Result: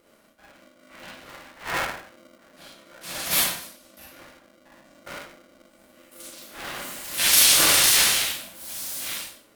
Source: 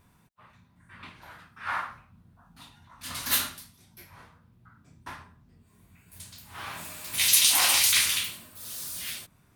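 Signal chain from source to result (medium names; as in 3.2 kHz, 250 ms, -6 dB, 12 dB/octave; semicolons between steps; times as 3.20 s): Schroeder reverb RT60 0.45 s, combs from 31 ms, DRR -4 dB; polarity switched at an audio rate 430 Hz; trim -1 dB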